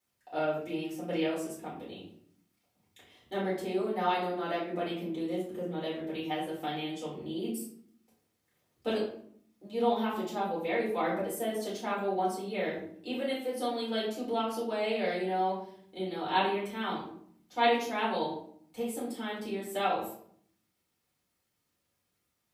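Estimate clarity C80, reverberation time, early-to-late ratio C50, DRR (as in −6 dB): 8.5 dB, 0.60 s, 4.5 dB, −8.0 dB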